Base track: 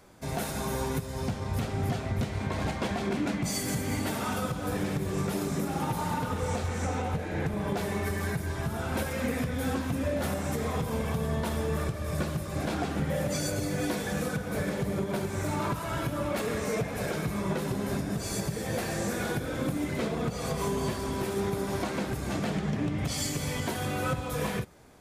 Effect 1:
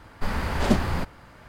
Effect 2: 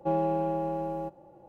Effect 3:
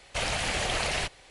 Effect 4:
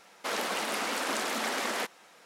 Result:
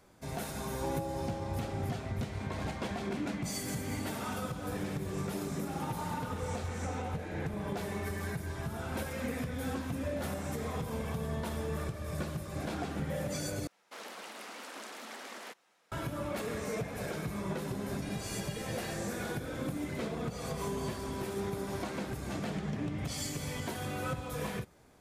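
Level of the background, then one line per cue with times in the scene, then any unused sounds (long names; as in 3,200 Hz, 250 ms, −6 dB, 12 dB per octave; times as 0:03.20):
base track −6 dB
0:00.77: mix in 2 −10.5 dB
0:13.67: overwrite with 4 −14 dB
0:17.86: mix in 3 −5 dB + stiff-string resonator 120 Hz, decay 0.54 s, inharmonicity 0.03
not used: 1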